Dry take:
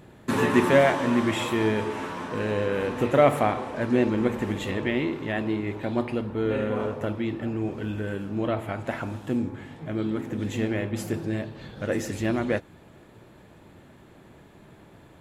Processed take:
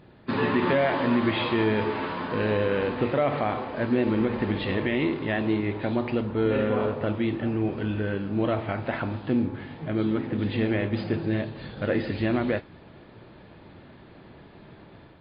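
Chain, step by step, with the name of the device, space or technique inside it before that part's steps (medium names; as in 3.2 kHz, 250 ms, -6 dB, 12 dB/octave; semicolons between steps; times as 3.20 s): low-bitrate web radio (level rider gain up to 5.5 dB; peak limiter -10.5 dBFS, peak gain reduction 8 dB; trim -2.5 dB; MP3 24 kbps 11.025 kHz)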